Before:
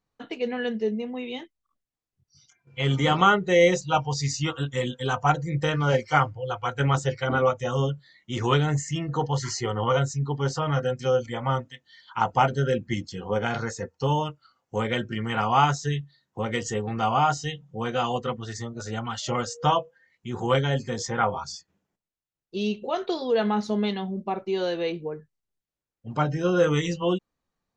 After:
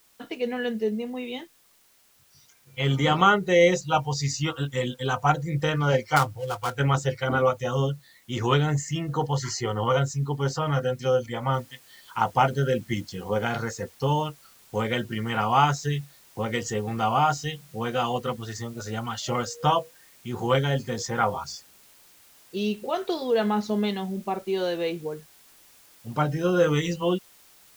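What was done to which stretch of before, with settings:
0:06.16–0:06.75: gap after every zero crossing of 0.082 ms
0:11.54: noise floor change −61 dB −55 dB

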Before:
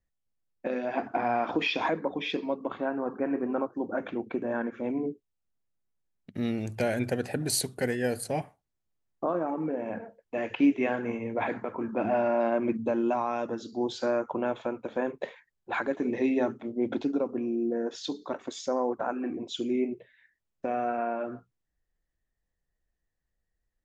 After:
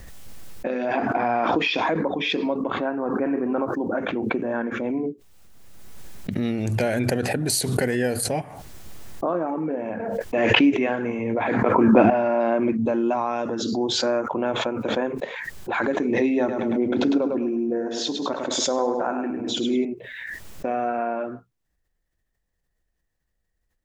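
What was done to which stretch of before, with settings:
0:11.66–0:12.10: clip gain +9.5 dB
0:16.38–0:19.85: repeating echo 104 ms, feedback 34%, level −6 dB
whole clip: background raised ahead of every attack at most 24 dB per second; level +4 dB

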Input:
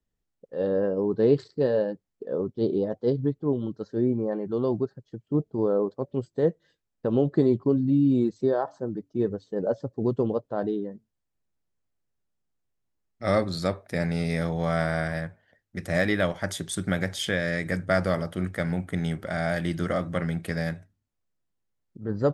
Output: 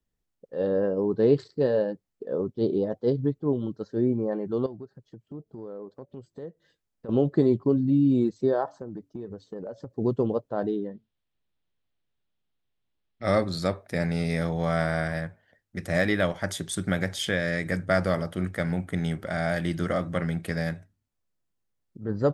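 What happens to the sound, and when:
0:04.66–0:07.09: downward compressor 2.5 to 1, threshold −43 dBFS
0:08.67–0:09.91: downward compressor 16 to 1, threshold −32 dBFS
0:10.86–0:13.24: low-pass with resonance 3,500 Hz, resonance Q 2.6

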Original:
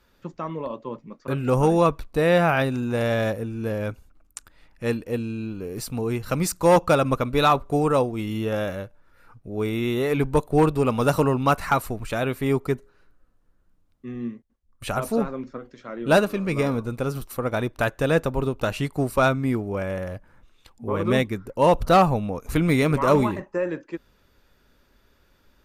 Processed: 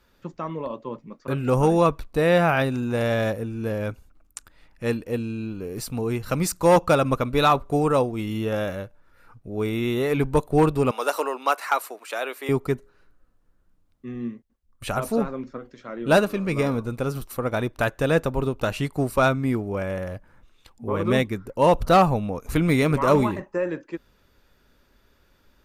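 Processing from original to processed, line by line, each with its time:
0:10.91–0:12.49: Bessel high-pass filter 560 Hz, order 6

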